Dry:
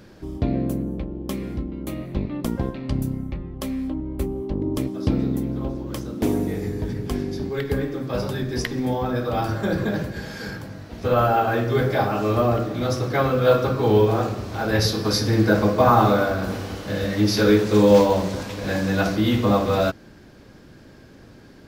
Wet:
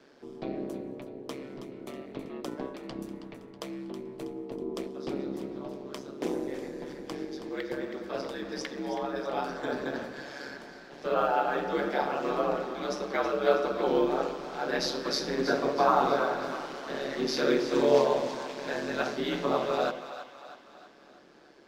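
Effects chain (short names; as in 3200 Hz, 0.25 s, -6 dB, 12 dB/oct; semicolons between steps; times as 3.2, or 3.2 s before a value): ring modulator 69 Hz; three-band isolator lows -22 dB, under 250 Hz, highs -14 dB, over 8000 Hz; split-band echo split 630 Hz, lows 0.104 s, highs 0.322 s, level -10.5 dB; gain -4 dB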